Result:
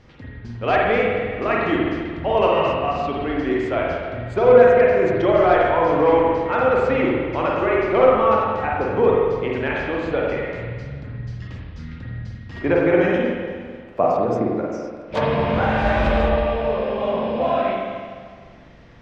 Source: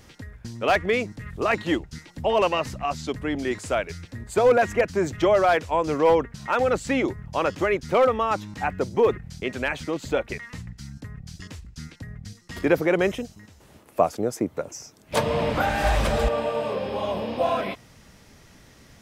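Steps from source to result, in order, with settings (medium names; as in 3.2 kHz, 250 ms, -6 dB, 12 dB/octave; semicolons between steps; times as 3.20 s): distance through air 200 m; spring tank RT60 1.8 s, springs 42/50 ms, chirp 40 ms, DRR -4 dB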